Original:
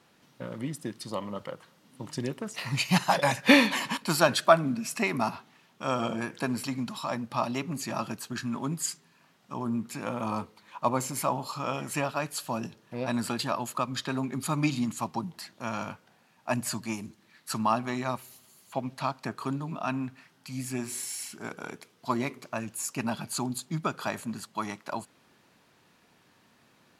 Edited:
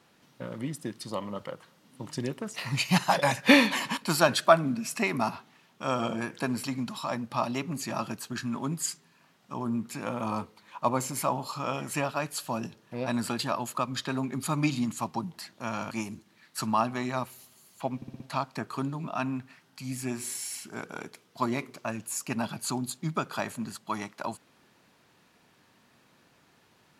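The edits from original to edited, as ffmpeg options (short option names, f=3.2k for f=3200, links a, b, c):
-filter_complex "[0:a]asplit=6[a][b][c][d][e][f];[a]atrim=end=15.912[g];[b]atrim=start=16.828:end=18.942[h];[c]atrim=start=18.878:end=18.942[i];[d]atrim=start=18.878:end=18.942[j];[e]atrim=start=18.878:end=18.942[k];[f]atrim=start=18.878[l];[g][h]acrossfade=d=0.004:c1=hsin:c2=hsin[m];[m][i]acrossfade=d=0.004:c1=hsin:c2=hsin[n];[n][j]acrossfade=d=0.004:c1=hsin:c2=hsin[o];[o][k]acrossfade=d=0.004:c1=hsin:c2=hsin[p];[p][l]acrossfade=d=0.004:c1=hsin:c2=hsin"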